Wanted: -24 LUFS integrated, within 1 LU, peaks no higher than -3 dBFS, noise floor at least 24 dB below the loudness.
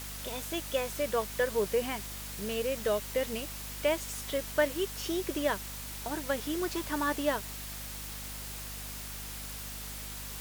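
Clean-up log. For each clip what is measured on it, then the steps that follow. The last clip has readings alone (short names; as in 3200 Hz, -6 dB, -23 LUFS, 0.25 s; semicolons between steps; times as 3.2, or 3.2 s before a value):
hum 50 Hz; harmonics up to 250 Hz; hum level -43 dBFS; noise floor -41 dBFS; noise floor target -58 dBFS; loudness -33.5 LUFS; peak -14.0 dBFS; loudness target -24.0 LUFS
-> notches 50/100/150/200/250 Hz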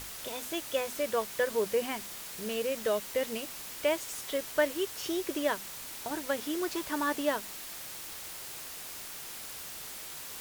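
hum none; noise floor -43 dBFS; noise floor target -58 dBFS
-> denoiser 15 dB, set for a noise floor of -43 dBFS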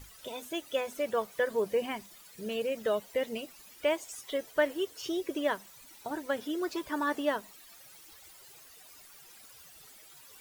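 noise floor -54 dBFS; noise floor target -58 dBFS
-> denoiser 6 dB, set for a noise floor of -54 dBFS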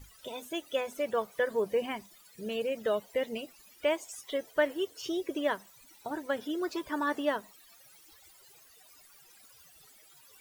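noise floor -59 dBFS; loudness -33.5 LUFS; peak -14.5 dBFS; loudness target -24.0 LUFS
-> gain +9.5 dB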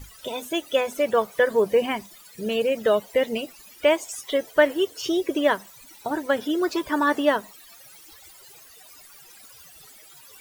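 loudness -24.0 LUFS; peak -5.0 dBFS; noise floor -49 dBFS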